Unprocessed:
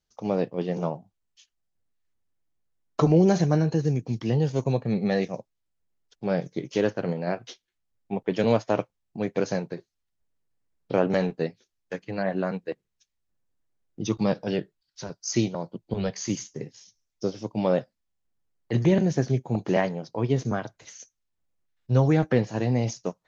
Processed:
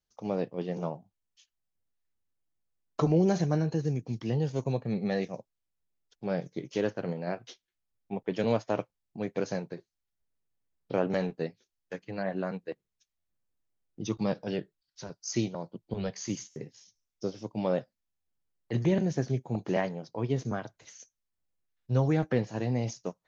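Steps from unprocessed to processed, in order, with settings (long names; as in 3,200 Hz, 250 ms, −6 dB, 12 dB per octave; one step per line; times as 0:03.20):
buffer that repeats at 0:13.18/0:16.49/0:18.20, samples 512, times 5
level −5.5 dB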